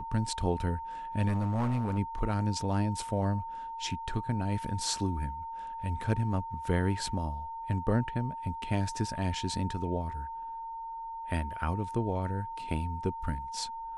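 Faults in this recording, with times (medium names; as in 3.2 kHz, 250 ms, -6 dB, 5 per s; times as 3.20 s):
whine 910 Hz -37 dBFS
1.27–1.99 s: clipped -25.5 dBFS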